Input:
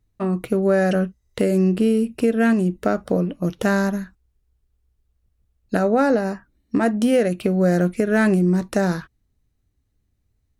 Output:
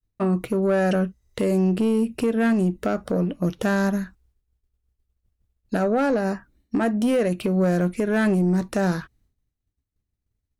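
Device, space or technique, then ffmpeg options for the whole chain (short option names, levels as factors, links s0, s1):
soft clipper into limiter: -af "agate=range=0.0224:threshold=0.00126:ratio=3:detection=peak,asoftclip=type=tanh:threshold=0.251,alimiter=limit=0.141:level=0:latency=1:release=196,volume=1.26"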